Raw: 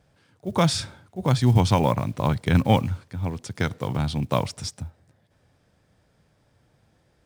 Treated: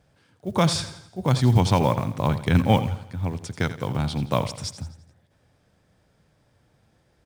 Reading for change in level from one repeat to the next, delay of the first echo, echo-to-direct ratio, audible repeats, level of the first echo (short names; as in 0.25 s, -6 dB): -6.5 dB, 85 ms, -12.5 dB, 4, -13.5 dB